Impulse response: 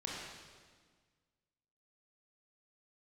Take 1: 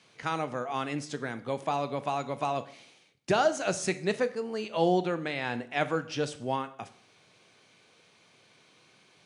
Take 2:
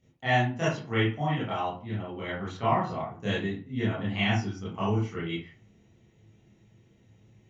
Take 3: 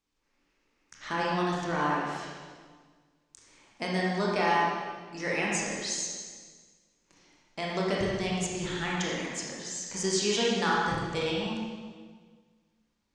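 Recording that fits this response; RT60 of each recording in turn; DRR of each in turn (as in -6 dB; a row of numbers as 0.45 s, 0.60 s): 3; 0.60 s, 0.40 s, 1.6 s; 12.0 dB, -10.0 dB, -4.5 dB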